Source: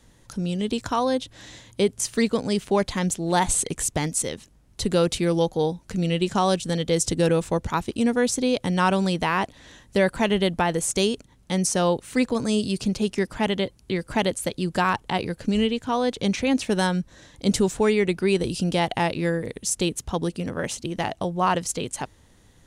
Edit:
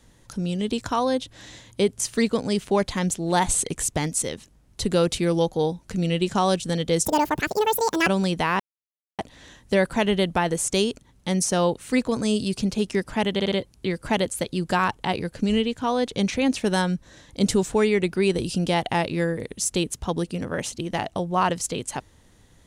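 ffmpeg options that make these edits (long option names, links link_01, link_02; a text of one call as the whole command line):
ffmpeg -i in.wav -filter_complex "[0:a]asplit=7[link_01][link_02][link_03][link_04][link_05][link_06][link_07];[link_01]atrim=end=7.054[link_08];[link_02]atrim=start=7.05:end=8.89,asetpts=PTS-STARTPTS,asetrate=79821,aresample=44100[link_09];[link_03]atrim=start=8.886:end=9.42,asetpts=PTS-STARTPTS,afade=type=out:start_time=0.53:duration=0.004:curve=hsin,apad=pad_dur=0.59[link_10];[link_04]atrim=start=9.42:end=13.632,asetpts=PTS-STARTPTS,afade=type=in:duration=0.004:curve=hsin[link_11];[link_05]atrim=start=13.568:end=13.632[link_12];[link_06]atrim=start=13.568:end=13.632[link_13];[link_07]atrim=start=13.568[link_14];[link_08][link_09]acrossfade=duration=0.004:curve1=hsin:curve2=hsin[link_15];[link_10][link_11]concat=n=2:v=0:a=1[link_16];[link_15][link_16]acrossfade=duration=0.004:curve1=hsin:curve2=hsin[link_17];[link_17][link_12]acrossfade=duration=0.004:curve1=hsin:curve2=hsin[link_18];[link_18][link_13]acrossfade=duration=0.004:curve1=hsin:curve2=hsin[link_19];[link_19][link_14]acrossfade=duration=0.004:curve1=hsin:curve2=hsin" out.wav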